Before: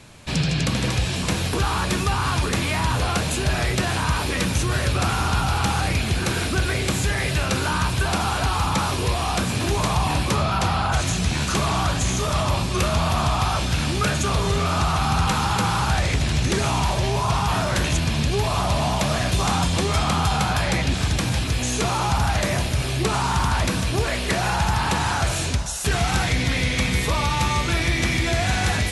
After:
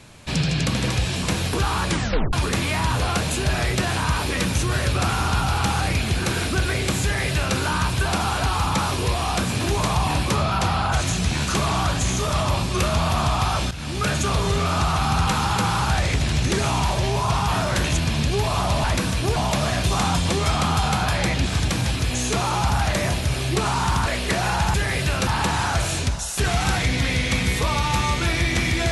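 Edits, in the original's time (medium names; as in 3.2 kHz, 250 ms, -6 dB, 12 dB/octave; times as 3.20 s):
1.89 s: tape stop 0.44 s
7.03–7.56 s: copy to 24.74 s
13.71–14.12 s: fade in, from -15 dB
23.54–24.06 s: move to 18.84 s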